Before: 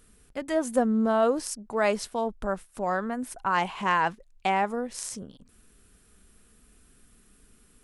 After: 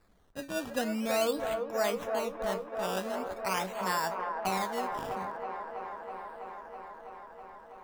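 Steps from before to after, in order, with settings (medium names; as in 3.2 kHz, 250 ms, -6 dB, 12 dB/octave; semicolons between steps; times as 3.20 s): feedback comb 94 Hz, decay 0.22 s, harmonics all, mix 70%; decimation with a swept rate 14×, swing 100% 0.44 Hz; feedback echo behind a band-pass 326 ms, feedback 82%, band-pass 770 Hz, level -4 dB; trim -2 dB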